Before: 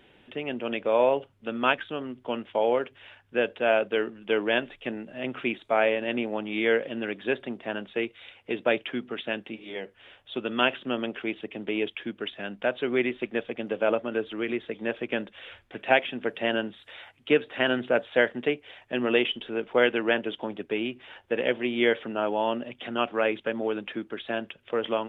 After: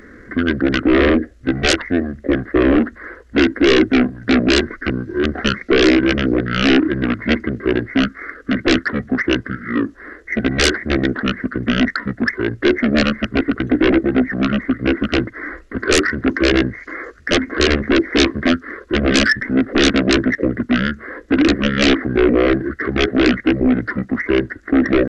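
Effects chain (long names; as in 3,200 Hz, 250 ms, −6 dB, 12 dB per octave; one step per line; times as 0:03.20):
sine wavefolder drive 18 dB, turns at −5.5 dBFS
pitch shifter −9.5 semitones
phaser with its sweep stopped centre 370 Hz, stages 4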